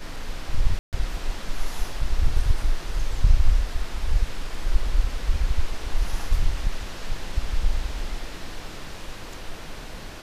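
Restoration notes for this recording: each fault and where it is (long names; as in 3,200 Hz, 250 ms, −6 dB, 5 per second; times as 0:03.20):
0:00.79–0:00.93: drop-out 138 ms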